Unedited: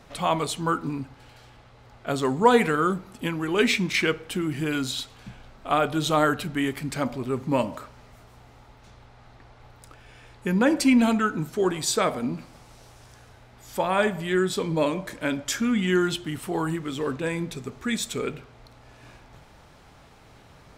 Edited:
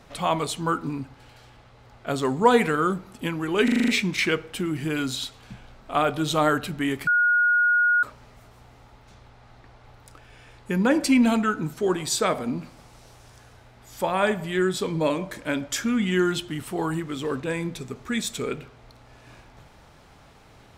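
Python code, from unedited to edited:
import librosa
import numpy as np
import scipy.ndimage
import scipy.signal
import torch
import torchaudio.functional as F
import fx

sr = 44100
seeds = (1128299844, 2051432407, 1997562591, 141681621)

y = fx.edit(x, sr, fx.stutter(start_s=3.64, slice_s=0.04, count=7),
    fx.bleep(start_s=6.83, length_s=0.96, hz=1440.0, db=-16.5), tone=tone)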